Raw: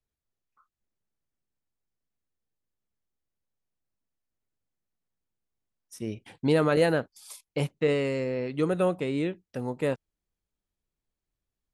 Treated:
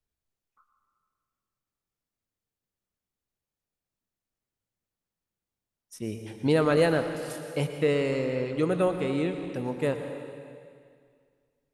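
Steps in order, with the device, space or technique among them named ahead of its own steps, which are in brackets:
saturated reverb return (on a send at −5 dB: convolution reverb RT60 2.1 s, pre-delay 98 ms + soft clipping −23 dBFS, distortion −12 dB)

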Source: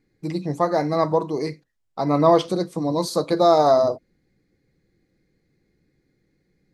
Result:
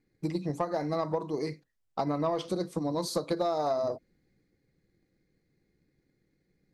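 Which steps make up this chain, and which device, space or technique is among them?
drum-bus smash (transient designer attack +7 dB, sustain +3 dB; downward compressor 6 to 1, threshold −18 dBFS, peak gain reduction 10 dB; soft clipping −10 dBFS, distortion −22 dB)
level −7 dB

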